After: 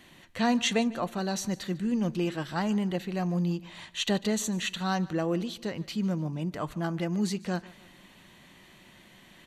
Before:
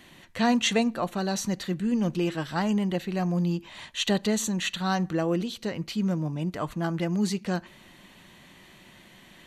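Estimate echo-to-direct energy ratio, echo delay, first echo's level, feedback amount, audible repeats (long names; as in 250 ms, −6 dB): −20.0 dB, 148 ms, −21.0 dB, 41%, 2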